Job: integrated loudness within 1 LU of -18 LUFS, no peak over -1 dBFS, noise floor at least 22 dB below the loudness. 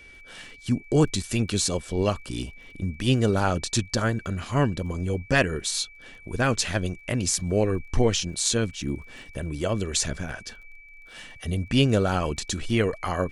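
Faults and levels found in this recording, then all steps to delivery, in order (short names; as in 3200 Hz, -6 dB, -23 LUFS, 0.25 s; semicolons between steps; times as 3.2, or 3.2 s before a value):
ticks 23/s; steady tone 2300 Hz; tone level -47 dBFS; loudness -25.5 LUFS; peak -6.5 dBFS; loudness target -18.0 LUFS
-> de-click; notch 2300 Hz, Q 30; gain +7.5 dB; limiter -1 dBFS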